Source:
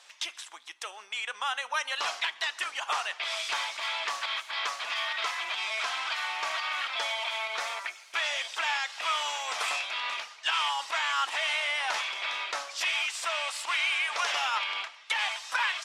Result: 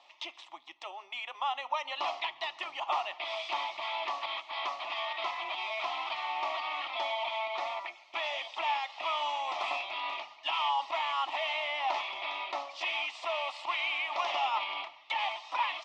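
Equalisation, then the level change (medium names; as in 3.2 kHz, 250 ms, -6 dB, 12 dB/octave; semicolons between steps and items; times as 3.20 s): distance through air 160 m; tone controls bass +4 dB, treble -13 dB; static phaser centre 310 Hz, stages 8; +5.0 dB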